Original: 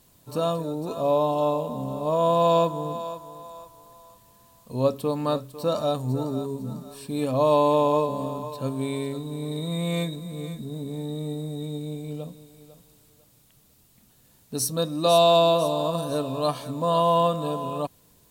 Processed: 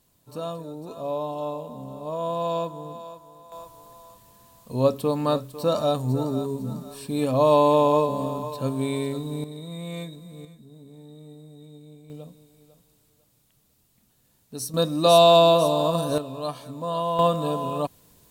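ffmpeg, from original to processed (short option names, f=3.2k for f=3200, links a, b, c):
-af "asetnsamples=n=441:p=0,asendcmd='3.52 volume volume 2dB;9.44 volume volume -7.5dB;10.45 volume volume -14dB;12.1 volume volume -6dB;14.74 volume volume 3dB;16.18 volume volume -5.5dB;17.19 volume volume 2dB',volume=-7dB"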